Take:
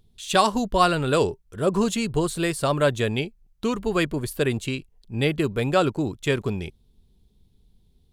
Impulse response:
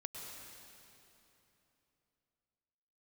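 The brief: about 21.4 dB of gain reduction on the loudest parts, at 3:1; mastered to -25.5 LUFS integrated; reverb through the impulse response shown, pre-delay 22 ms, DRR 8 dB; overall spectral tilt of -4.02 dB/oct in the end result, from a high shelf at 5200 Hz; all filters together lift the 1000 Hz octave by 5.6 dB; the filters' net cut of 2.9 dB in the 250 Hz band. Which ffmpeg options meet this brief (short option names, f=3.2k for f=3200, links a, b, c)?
-filter_complex "[0:a]equalizer=f=250:t=o:g=-4.5,equalizer=f=1k:t=o:g=7,highshelf=f=5.2k:g=7,acompressor=threshold=-39dB:ratio=3,asplit=2[a][b];[1:a]atrim=start_sample=2205,adelay=22[c];[b][c]afir=irnorm=-1:irlink=0,volume=-6dB[d];[a][d]amix=inputs=2:normalize=0,volume=12dB"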